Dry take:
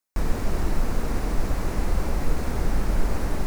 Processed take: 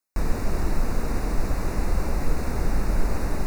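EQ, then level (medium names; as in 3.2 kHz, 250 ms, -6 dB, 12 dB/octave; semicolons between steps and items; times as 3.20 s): Butterworth band-stop 3.2 kHz, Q 4.2; 0.0 dB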